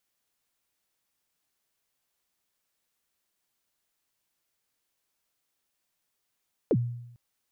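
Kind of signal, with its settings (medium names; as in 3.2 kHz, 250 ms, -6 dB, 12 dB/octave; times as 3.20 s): kick drum length 0.45 s, from 550 Hz, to 120 Hz, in 52 ms, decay 0.83 s, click off, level -18 dB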